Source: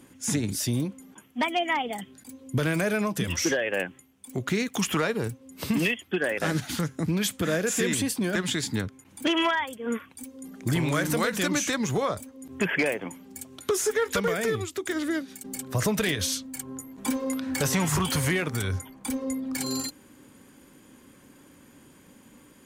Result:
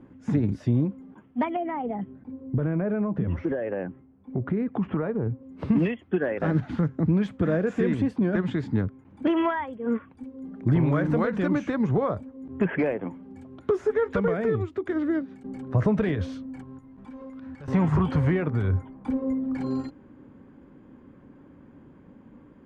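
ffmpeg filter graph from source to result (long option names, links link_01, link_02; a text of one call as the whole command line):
ffmpeg -i in.wav -filter_complex "[0:a]asettb=1/sr,asplit=3[link_01][link_02][link_03];[link_01]atrim=end=1.564[link_04];[link_02]atrim=start=1.56:end=5.43,asetpts=PTS-STARTPTS,afade=type=in:duration=0.004:curve=qsin,afade=type=out:start_time=3.866:duration=0.004:curve=qsin,lowpass=2600,tiltshelf=frequency=1200:gain=3.5,acompressor=threshold=-28dB:ratio=2.5:attack=3.2:release=140:knee=1:detection=peak[link_05];[link_03]atrim=start=5.426[link_06];[link_04][link_05]acrossfade=duration=0.004:curve1=hsin:curve2=qsin[link_07];[link_07][link_06]acrossfade=duration=0.004:curve1=qsin:curve2=hsin,asettb=1/sr,asplit=3[link_08][link_09][link_10];[link_08]atrim=end=16.634[link_11];[link_09]atrim=start=16.63:end=17.68,asetpts=PTS-STARTPTS,afade=type=in:duration=0.004:curve=qsin,afade=type=out:start_time=1.046:duration=0.004:curve=qsin,equalizer=frequency=380:width=0.45:gain=-9.5,acompressor=threshold=-39dB:ratio=8:attack=3.2:release=140:knee=1:detection=peak,acrusher=bits=4:mode=log:mix=0:aa=0.000001[link_12];[link_10]atrim=start=17.676[link_13];[link_11][link_12]acrossfade=duration=0.004:curve1=hsin:curve2=qsin[link_14];[link_14][link_13]acrossfade=duration=0.004:curve1=qsin:curve2=hsin,lowpass=1300,lowshelf=frequency=350:gain=6" out.wav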